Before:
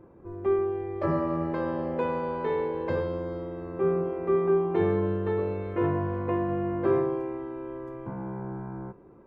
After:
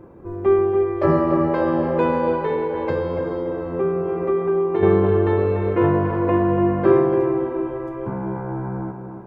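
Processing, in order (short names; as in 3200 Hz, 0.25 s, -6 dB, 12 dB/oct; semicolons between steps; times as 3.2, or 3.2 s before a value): tape echo 0.288 s, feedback 51%, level -5.5 dB, low-pass 1600 Hz; 2.34–4.83 compressor 2.5:1, threshold -29 dBFS, peak gain reduction 8 dB; gain +8.5 dB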